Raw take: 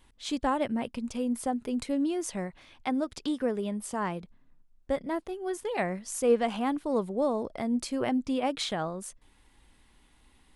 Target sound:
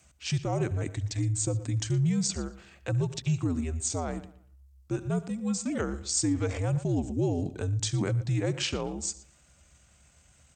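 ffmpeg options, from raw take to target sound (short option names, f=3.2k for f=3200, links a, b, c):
-filter_complex "[0:a]asplit=2[a][b];[b]aecho=0:1:73:0.106[c];[a][c]amix=inputs=2:normalize=0,asetrate=34006,aresample=44100,atempo=1.29684,bass=f=250:g=14,treble=f=4k:g=9,afreqshift=-79,asplit=2[d][e];[e]adelay=118,lowpass=f=4.4k:p=1,volume=-16.5dB,asplit=2[f][g];[g]adelay=118,lowpass=f=4.4k:p=1,volume=0.29,asplit=2[h][i];[i]adelay=118,lowpass=f=4.4k:p=1,volume=0.29[j];[f][h][j]amix=inputs=3:normalize=0[k];[d][k]amix=inputs=2:normalize=0,alimiter=limit=-16.5dB:level=0:latency=1:release=32,highpass=140,highshelf=f=7.6k:g=6,volume=-1dB"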